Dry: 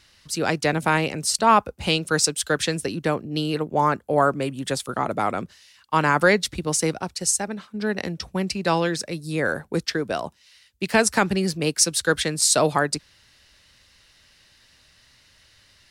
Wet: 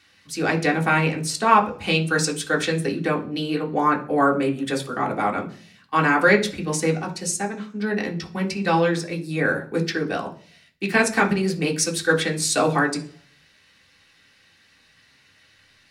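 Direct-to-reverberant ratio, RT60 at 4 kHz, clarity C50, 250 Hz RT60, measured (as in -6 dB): -1.0 dB, 0.50 s, 13.0 dB, 0.70 s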